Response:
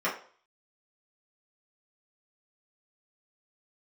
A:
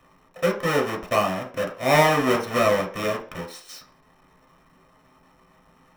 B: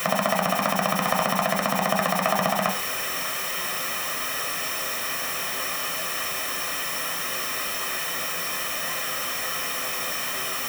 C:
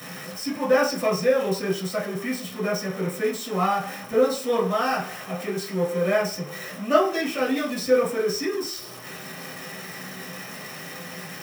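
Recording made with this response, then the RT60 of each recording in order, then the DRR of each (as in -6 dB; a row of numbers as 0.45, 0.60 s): C; 0.45, 0.45, 0.45 s; 0.0, 4.0, -8.0 dB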